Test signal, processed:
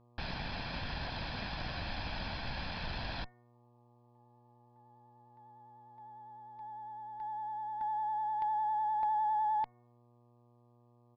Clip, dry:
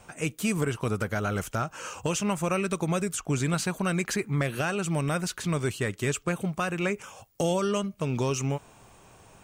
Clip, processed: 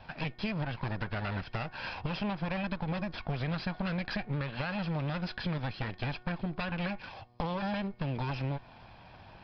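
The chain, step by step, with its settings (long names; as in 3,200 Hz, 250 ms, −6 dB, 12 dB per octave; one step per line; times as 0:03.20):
lower of the sound and its delayed copy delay 1.2 ms
pitch vibrato 9.9 Hz 35 cents
downsampling to 11,025 Hz
hum removal 364.4 Hz, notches 6
downward compressor 4 to 1, threshold −35 dBFS
hum with harmonics 120 Hz, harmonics 10, −68 dBFS −5 dB per octave
level +3 dB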